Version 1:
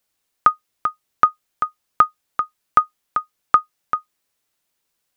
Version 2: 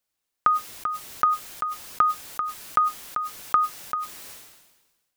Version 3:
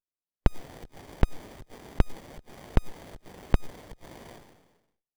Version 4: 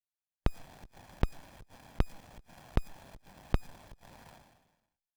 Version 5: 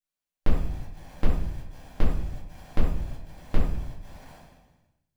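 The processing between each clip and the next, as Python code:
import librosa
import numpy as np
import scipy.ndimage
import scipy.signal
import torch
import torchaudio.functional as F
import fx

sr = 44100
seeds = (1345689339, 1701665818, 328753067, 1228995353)

y1 = fx.sustainer(x, sr, db_per_s=47.0)
y1 = F.gain(torch.from_numpy(y1), -7.0).numpy()
y2 = fx.noise_reduce_blind(y1, sr, reduce_db=23)
y2 = fx.running_max(y2, sr, window=33)
y2 = F.gain(torch.from_numpy(y2), 2.0).numpy()
y3 = fx.lower_of_two(y2, sr, delay_ms=1.2)
y3 = F.gain(torch.from_numpy(y3), -4.5).numpy()
y4 = fx.room_shoebox(y3, sr, seeds[0], volume_m3=110.0, walls='mixed', distance_m=2.1)
y4 = F.gain(torch.from_numpy(y4), -3.5).numpy()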